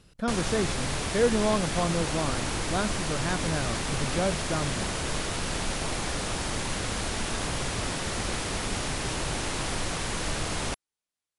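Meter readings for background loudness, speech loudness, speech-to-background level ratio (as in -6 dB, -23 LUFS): -30.5 LUFS, -30.5 LUFS, 0.0 dB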